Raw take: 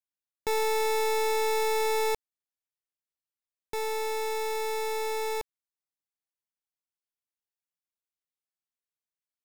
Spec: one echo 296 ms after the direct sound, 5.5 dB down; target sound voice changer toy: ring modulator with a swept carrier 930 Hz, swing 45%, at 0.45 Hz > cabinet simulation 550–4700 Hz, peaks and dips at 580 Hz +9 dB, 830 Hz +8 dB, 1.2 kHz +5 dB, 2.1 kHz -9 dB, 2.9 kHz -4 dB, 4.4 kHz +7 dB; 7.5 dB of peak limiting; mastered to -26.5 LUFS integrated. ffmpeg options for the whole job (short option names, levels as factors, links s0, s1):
-af "alimiter=level_in=2.99:limit=0.0631:level=0:latency=1,volume=0.335,aecho=1:1:296:0.531,aeval=exprs='val(0)*sin(2*PI*930*n/s+930*0.45/0.45*sin(2*PI*0.45*n/s))':c=same,highpass=550,equalizer=f=580:t=q:w=4:g=9,equalizer=f=830:t=q:w=4:g=8,equalizer=f=1200:t=q:w=4:g=5,equalizer=f=2100:t=q:w=4:g=-9,equalizer=f=2900:t=q:w=4:g=-4,equalizer=f=4400:t=q:w=4:g=7,lowpass=f=4700:w=0.5412,lowpass=f=4700:w=1.3066,volume=1.78"